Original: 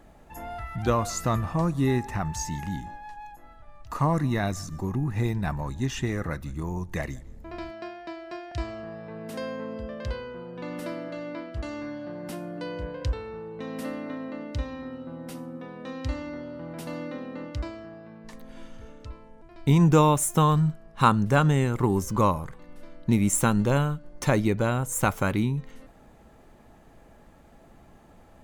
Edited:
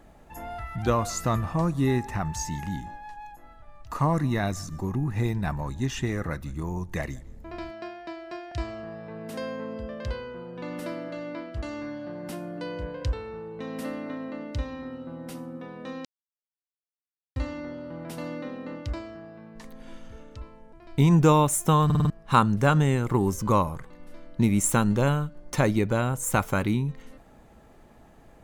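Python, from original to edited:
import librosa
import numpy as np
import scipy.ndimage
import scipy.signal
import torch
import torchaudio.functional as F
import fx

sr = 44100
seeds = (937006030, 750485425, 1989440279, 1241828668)

y = fx.edit(x, sr, fx.insert_silence(at_s=16.05, length_s=1.31),
    fx.stutter_over(start_s=20.54, slice_s=0.05, count=5), tone=tone)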